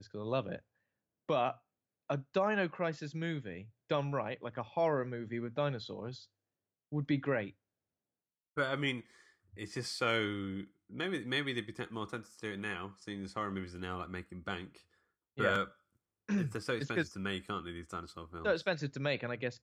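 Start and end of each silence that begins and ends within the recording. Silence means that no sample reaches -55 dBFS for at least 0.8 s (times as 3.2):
7.52–8.57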